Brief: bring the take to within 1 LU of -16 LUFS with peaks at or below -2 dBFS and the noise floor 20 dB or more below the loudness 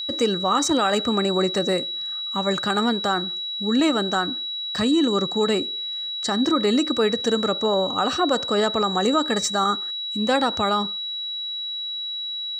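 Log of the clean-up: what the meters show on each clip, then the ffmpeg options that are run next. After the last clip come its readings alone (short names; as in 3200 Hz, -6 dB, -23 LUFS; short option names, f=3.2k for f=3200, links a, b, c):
steady tone 3900 Hz; tone level -27 dBFS; loudness -22.0 LUFS; peak -9.0 dBFS; loudness target -16.0 LUFS
-> -af "bandreject=f=3.9k:w=30"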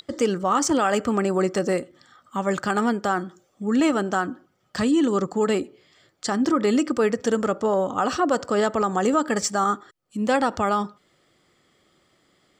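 steady tone none; loudness -23.0 LUFS; peak -10.0 dBFS; loudness target -16.0 LUFS
-> -af "volume=7dB"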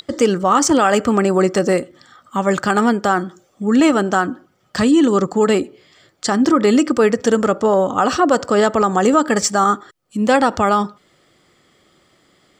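loudness -16.0 LUFS; peak -3.0 dBFS; noise floor -59 dBFS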